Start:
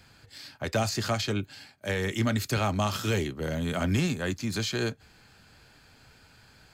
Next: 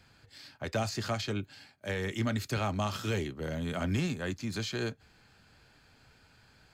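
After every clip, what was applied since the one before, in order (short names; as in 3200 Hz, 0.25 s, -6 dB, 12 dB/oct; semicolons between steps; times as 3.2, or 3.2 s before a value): high shelf 7500 Hz -6 dB; gain -4.5 dB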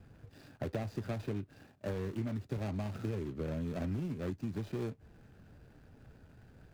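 median filter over 41 samples; compressor 6:1, threshold -42 dBFS, peak gain reduction 14 dB; gain +7.5 dB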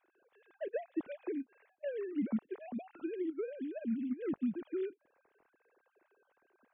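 sine-wave speech; upward expander 1.5:1, over -46 dBFS; gain +1.5 dB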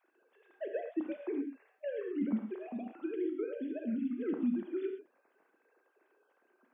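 brick-wall FIR high-pass 160 Hz; on a send at -4 dB: reverb, pre-delay 3 ms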